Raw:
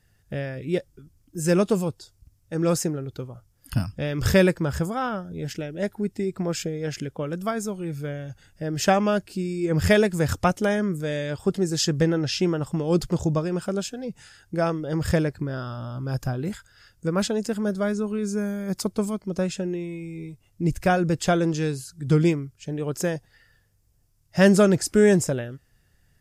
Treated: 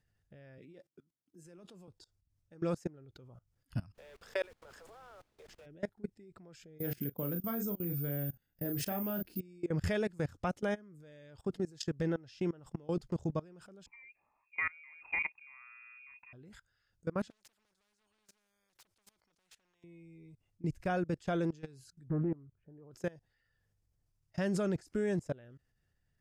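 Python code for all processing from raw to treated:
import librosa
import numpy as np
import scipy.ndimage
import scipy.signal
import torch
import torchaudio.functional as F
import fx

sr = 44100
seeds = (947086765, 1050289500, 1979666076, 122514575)

y = fx.chain(x, sr, fx.highpass(hz=160.0, slope=24),
    fx.over_compress(threshold_db=-29.0, ratio=-1.0),
    fx.comb_fb(f0_hz=340.0, decay_s=0.19, harmonics='all', damping=0.0, mix_pct=40), at=(0.58, 1.88))
y = fx.steep_highpass(y, sr, hz=410.0, slope=72, at=(3.94, 5.65), fade=0.02)
y = fx.level_steps(y, sr, step_db=20, at=(3.94, 5.65), fade=0.02)
y = fx.dmg_noise_colour(y, sr, seeds[0], colour='pink', level_db=-49.0, at=(3.94, 5.65), fade=0.02)
y = fx.chain(y, sr, fx.peak_eq(hz=220.0, db=7.0, octaves=1.7),
    fx.doubler(ms=35.0, db=-6.5),
    fx.resample_bad(factor=3, down='filtered', up='zero_stuff'), at=(6.79, 9.4))
y = fx.chain(y, sr, fx.highpass(hz=72.0, slope=12),
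    fx.freq_invert(carrier_hz=2600), at=(13.86, 16.33))
y = fx.chain(y, sr, fx.low_shelf(hz=190.0, db=-6.0),
    fx.clip_hard(threshold_db=-25.5),
    fx.spectral_comp(ratio=4.0), at=(17.3, 19.84))
y = fx.chain(y, sr, fx.lowpass(hz=1400.0, slope=24),
    fx.doppler_dist(depth_ms=0.32), at=(22.08, 22.91))
y = fx.level_steps(y, sr, step_db=23)
y = fx.high_shelf(y, sr, hz=7200.0, db=-10.0)
y = y * librosa.db_to_amplitude(-8.5)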